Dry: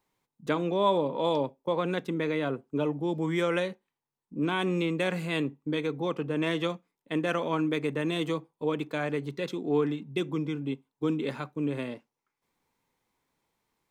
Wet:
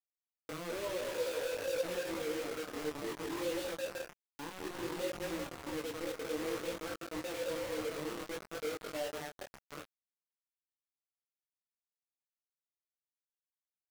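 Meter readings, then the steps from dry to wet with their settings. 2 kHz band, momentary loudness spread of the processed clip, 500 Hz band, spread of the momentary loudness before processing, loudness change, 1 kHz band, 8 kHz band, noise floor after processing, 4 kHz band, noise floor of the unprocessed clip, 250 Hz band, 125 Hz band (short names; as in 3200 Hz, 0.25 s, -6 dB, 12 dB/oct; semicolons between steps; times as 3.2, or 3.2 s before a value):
-9.0 dB, 11 LU, -8.5 dB, 7 LU, -9.0 dB, -12.0 dB, +6.0 dB, under -85 dBFS, -7.0 dB, under -85 dBFS, -14.0 dB, -19.0 dB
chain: spectral contrast raised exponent 2; in parallel at -9.5 dB: short-mantissa float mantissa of 2-bit; on the sum: HPF 110 Hz 24 dB/oct; vibrato 6.5 Hz 7.3 cents; compressor 8:1, threshold -29 dBFS, peak gain reduction 11.5 dB; on a send: bouncing-ball echo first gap 0.21 s, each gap 0.8×, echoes 5; on the sum: band-pass sweep 490 Hz -> 1000 Hz, 7.77–10.9; harmonic-percussive split percussive -12 dB; requantised 6-bit, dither none; detuned doubles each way 20 cents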